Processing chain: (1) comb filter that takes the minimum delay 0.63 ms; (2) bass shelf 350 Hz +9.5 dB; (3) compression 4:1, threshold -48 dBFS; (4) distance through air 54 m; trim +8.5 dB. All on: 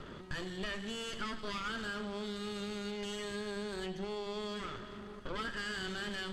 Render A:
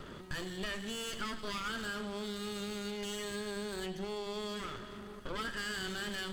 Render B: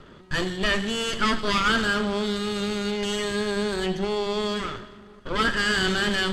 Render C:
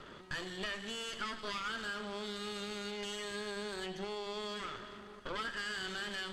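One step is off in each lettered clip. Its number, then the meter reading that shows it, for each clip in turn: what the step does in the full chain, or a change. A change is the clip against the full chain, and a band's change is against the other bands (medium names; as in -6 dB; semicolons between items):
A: 4, 8 kHz band +5.0 dB; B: 3, mean gain reduction 12.5 dB; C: 2, 125 Hz band -6.0 dB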